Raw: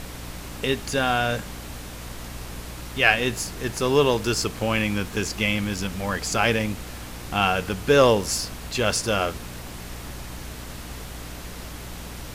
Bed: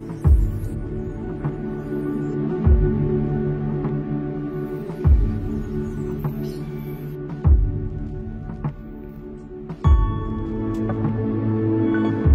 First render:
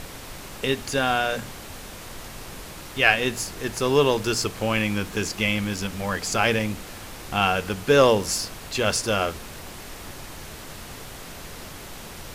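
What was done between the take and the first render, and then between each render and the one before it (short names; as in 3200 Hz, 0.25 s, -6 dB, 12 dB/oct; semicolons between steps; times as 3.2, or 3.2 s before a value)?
notches 60/120/180/240/300 Hz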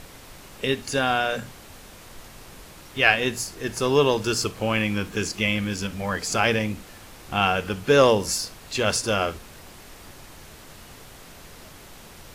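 noise print and reduce 6 dB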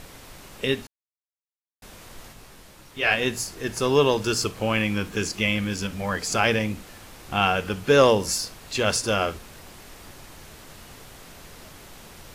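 0.87–1.82 mute; 2.32–3.1 detuned doubles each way 44 cents -> 26 cents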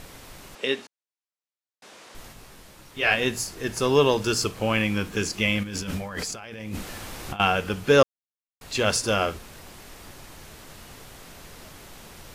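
0.55–2.15 BPF 320–7700 Hz; 5.63–7.4 negative-ratio compressor -34 dBFS; 8.03–8.61 mute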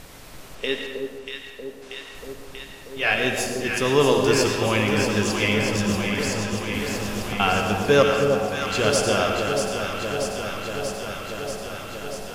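echo with dull and thin repeats by turns 0.318 s, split 950 Hz, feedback 87%, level -5 dB; digital reverb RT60 1.4 s, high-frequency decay 0.65×, pre-delay 55 ms, DRR 4 dB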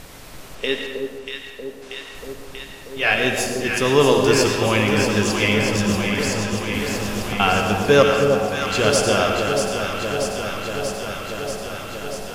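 gain +3 dB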